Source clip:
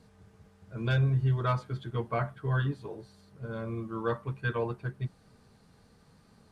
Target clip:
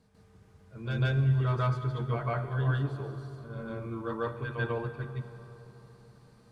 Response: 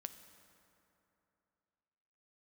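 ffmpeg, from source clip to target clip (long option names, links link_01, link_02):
-filter_complex "[0:a]asplit=2[link_01][link_02];[1:a]atrim=start_sample=2205,asetrate=30429,aresample=44100,adelay=146[link_03];[link_02][link_03]afir=irnorm=-1:irlink=0,volume=7.5dB[link_04];[link_01][link_04]amix=inputs=2:normalize=0,volume=-7dB"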